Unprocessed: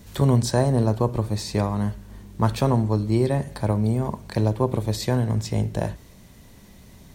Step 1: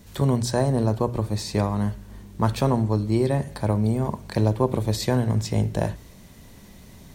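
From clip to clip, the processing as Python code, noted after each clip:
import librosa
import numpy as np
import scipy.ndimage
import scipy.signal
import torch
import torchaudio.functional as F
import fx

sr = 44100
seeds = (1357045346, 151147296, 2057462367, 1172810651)

y = fx.hum_notches(x, sr, base_hz=60, count=2)
y = fx.rider(y, sr, range_db=10, speed_s=2.0)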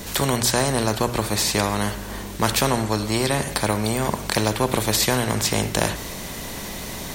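y = fx.peak_eq(x, sr, hz=99.0, db=-4.0, octaves=0.72)
y = fx.spectral_comp(y, sr, ratio=2.0)
y = y * librosa.db_to_amplitude(3.5)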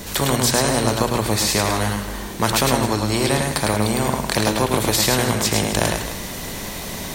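y = fx.echo_multitap(x, sr, ms=(106, 263), db=(-4.0, -14.0))
y = y * librosa.db_to_amplitude(1.0)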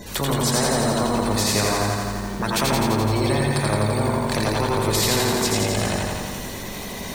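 y = np.clip(10.0 ** (12.5 / 20.0) * x, -1.0, 1.0) / 10.0 ** (12.5 / 20.0)
y = fx.spec_gate(y, sr, threshold_db=-20, keep='strong')
y = fx.echo_crushed(y, sr, ms=85, feedback_pct=80, bits=7, wet_db=-3)
y = y * librosa.db_to_amplitude(-3.5)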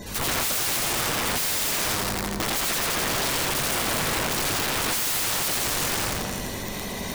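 y = (np.mod(10.0 ** (20.5 / 20.0) * x + 1.0, 2.0) - 1.0) / 10.0 ** (20.5 / 20.0)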